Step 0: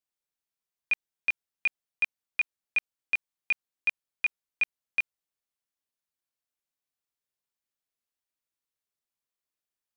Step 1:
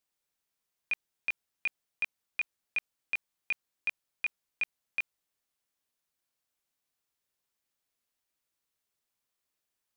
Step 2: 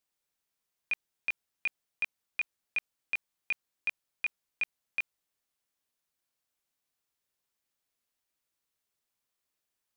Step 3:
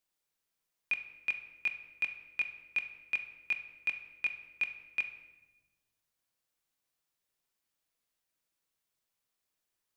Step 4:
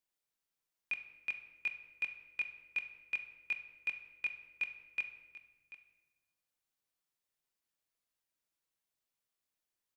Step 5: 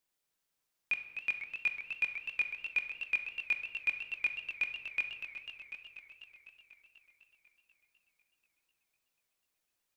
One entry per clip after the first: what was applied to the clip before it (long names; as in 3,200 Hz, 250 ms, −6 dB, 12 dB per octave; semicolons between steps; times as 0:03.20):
compressor whose output falls as the input rises −29 dBFS, ratio −1
no processing that can be heard
rectangular room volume 670 cubic metres, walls mixed, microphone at 0.64 metres; level −1 dB
single-tap delay 738 ms −15.5 dB; level −5 dB
feedback echo with a swinging delay time 247 ms, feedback 72%, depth 200 cents, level −9 dB; level +4.5 dB